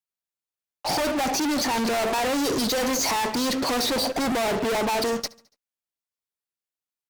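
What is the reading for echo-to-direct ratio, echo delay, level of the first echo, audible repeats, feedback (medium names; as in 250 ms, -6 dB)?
-21.5 dB, 71 ms, -23.0 dB, 3, 54%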